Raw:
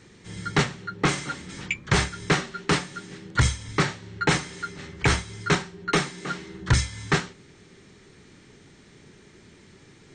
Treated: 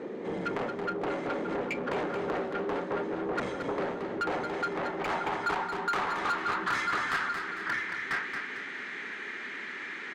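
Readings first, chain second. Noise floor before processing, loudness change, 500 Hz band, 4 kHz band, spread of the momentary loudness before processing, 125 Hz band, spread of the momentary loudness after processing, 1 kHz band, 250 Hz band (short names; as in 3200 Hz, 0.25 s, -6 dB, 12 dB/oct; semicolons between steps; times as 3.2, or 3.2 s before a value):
-53 dBFS, -6.0 dB, -0.5 dB, -11.5 dB, 11 LU, -19.0 dB, 8 LU, -0.5 dB, -5.5 dB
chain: bell 240 Hz +13 dB 1.4 oct; outdoor echo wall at 170 m, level -11 dB; band-pass sweep 540 Hz -> 1800 Hz, 3.96–7.89; compressor 2.5:1, threshold -42 dBFS, peak gain reduction 14.5 dB; bell 4800 Hz -2.5 dB; overdrive pedal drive 27 dB, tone 3600 Hz, clips at -23 dBFS; notch 5500 Hz, Q 20; feedback echo 0.225 s, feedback 40%, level -7.5 dB; core saturation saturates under 820 Hz; gain +3 dB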